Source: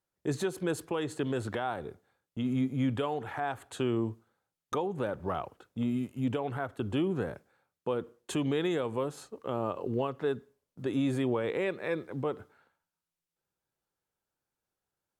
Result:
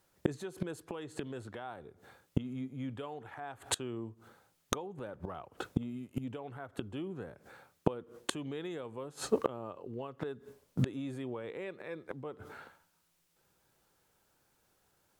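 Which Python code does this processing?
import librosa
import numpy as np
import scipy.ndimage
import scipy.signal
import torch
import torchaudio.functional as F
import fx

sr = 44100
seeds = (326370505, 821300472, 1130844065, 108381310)

y = fx.gate_flip(x, sr, shuts_db=-31.0, range_db=-26)
y = y * librosa.db_to_amplitude(15.5)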